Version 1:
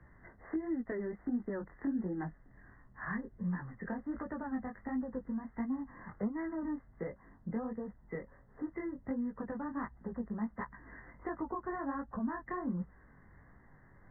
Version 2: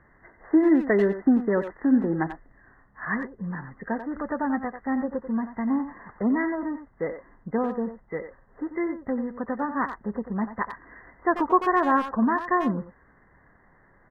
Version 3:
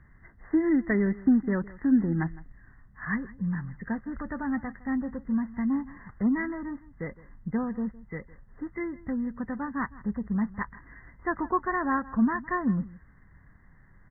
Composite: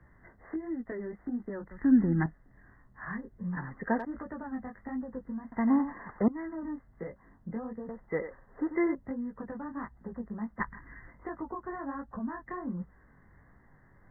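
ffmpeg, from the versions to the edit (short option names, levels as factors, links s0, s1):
-filter_complex "[2:a]asplit=2[s0][s1];[1:a]asplit=3[s2][s3][s4];[0:a]asplit=6[s5][s6][s7][s8][s9][s10];[s5]atrim=end=1.712[s11];[s0]atrim=start=1.708:end=2.262[s12];[s6]atrim=start=2.258:end=3.572[s13];[s2]atrim=start=3.568:end=4.052[s14];[s7]atrim=start=4.048:end=5.522[s15];[s3]atrim=start=5.518:end=6.282[s16];[s8]atrim=start=6.278:end=7.892[s17];[s4]atrim=start=7.888:end=8.952[s18];[s9]atrim=start=8.948:end=10.602[s19];[s1]atrim=start=10.598:end=11.072[s20];[s10]atrim=start=11.068[s21];[s11][s12]acrossfade=d=0.004:c1=hsin:c2=hsin[s22];[s22][s13]acrossfade=d=0.004:c1=hsin:c2=hsin[s23];[s23][s14]acrossfade=d=0.004:c1=hsin:c2=hsin[s24];[s24][s15]acrossfade=d=0.004:c1=hsin:c2=hsin[s25];[s25][s16]acrossfade=d=0.004:c1=hsin:c2=hsin[s26];[s26][s17]acrossfade=d=0.004:c1=hsin:c2=hsin[s27];[s27][s18]acrossfade=d=0.004:c1=hsin:c2=hsin[s28];[s28][s19]acrossfade=d=0.004:c1=hsin:c2=hsin[s29];[s29][s20]acrossfade=d=0.004:c1=hsin:c2=hsin[s30];[s30][s21]acrossfade=d=0.004:c1=hsin:c2=hsin"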